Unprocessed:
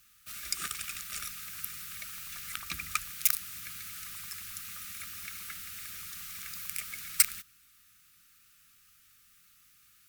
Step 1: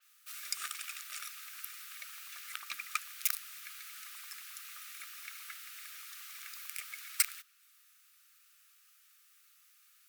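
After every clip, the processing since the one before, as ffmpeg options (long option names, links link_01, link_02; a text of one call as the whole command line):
ffmpeg -i in.wav -af "highpass=740,adynamicequalizer=threshold=0.00251:dfrequency=5000:dqfactor=0.7:tfrequency=5000:tqfactor=0.7:attack=5:release=100:ratio=0.375:range=2:mode=cutabove:tftype=highshelf,volume=-2.5dB" out.wav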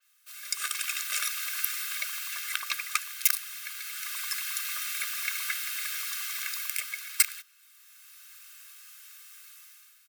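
ffmpeg -i in.wav -af "aecho=1:1:1.9:0.6,dynaudnorm=framelen=180:gausssize=7:maxgain=16.5dB,volume=-3dB" out.wav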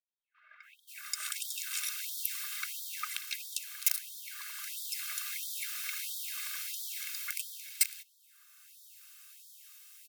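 ffmpeg -i in.wav -filter_complex "[0:a]acrossover=split=160|1900[link_01][link_02][link_03];[link_02]adelay=80[link_04];[link_03]adelay=610[link_05];[link_01][link_04][link_05]amix=inputs=3:normalize=0,afftfilt=real='re*gte(b*sr/1024,560*pow(3300/560,0.5+0.5*sin(2*PI*1.5*pts/sr)))':imag='im*gte(b*sr/1024,560*pow(3300/560,0.5+0.5*sin(2*PI*1.5*pts/sr)))':win_size=1024:overlap=0.75,volume=-4.5dB" out.wav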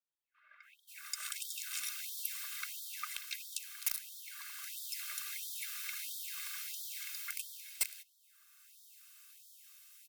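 ffmpeg -i in.wav -af "volume=19dB,asoftclip=hard,volume=-19dB,afreqshift=-16,volume=-4dB" out.wav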